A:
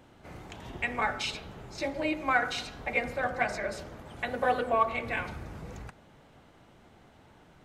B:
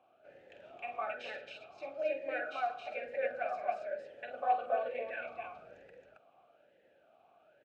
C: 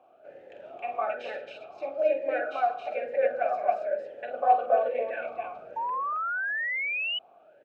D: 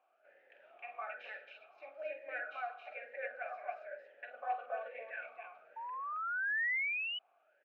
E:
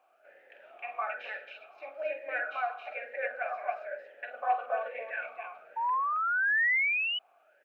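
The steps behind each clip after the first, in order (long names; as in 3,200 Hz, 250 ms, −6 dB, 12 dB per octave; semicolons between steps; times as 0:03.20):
loudspeakers that aren't time-aligned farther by 16 metres −7 dB, 93 metres −2 dB; formant filter swept between two vowels a-e 1.1 Hz
parametric band 530 Hz +10 dB 2.8 octaves; sound drawn into the spectrogram rise, 0:05.76–0:07.19, 890–3,000 Hz −30 dBFS
resonant band-pass 1,900 Hz, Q 1.9; level −3.5 dB
dynamic equaliser 1,000 Hz, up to +7 dB, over −60 dBFS, Q 4; level +7.5 dB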